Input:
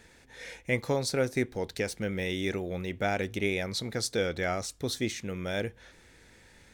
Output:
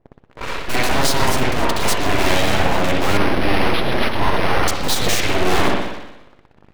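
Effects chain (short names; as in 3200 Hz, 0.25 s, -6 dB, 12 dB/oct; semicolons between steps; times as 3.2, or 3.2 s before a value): low-pass opened by the level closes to 410 Hz, open at -28.5 dBFS; in parallel at -4 dB: fuzz box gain 48 dB, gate -52 dBFS; on the sum: spring tank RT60 1 s, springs 60 ms, chirp 70 ms, DRR -3 dB; full-wave rectifier; 3.17–4.68 decimation joined by straight lines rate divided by 6×; gain -1 dB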